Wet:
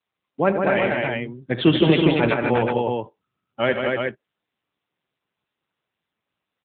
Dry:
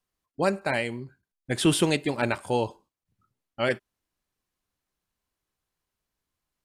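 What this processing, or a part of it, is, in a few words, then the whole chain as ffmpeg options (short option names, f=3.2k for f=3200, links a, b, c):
mobile call with aggressive noise cancelling: -af "highpass=f=110:w=0.5412,highpass=f=110:w=1.3066,lowpass=f=5.7k:w=0.5412,lowpass=f=5.7k:w=1.3066,aecho=1:1:42|74|84|156|239|366:0.126|0.237|0.141|0.531|0.668|0.562,afftdn=nr=16:nf=-45,volume=5dB" -ar 8000 -c:a libopencore_amrnb -b:a 10200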